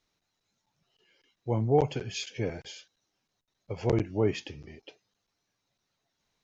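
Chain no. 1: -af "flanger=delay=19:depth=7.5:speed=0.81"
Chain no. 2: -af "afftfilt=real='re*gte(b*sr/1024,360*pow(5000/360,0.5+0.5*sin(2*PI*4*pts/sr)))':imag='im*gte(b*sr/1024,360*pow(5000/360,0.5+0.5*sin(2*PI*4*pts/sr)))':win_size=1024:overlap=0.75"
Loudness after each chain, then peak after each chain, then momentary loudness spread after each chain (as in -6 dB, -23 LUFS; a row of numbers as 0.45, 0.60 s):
-33.0, -40.0 LUFS; -12.0, -18.0 dBFS; 20, 18 LU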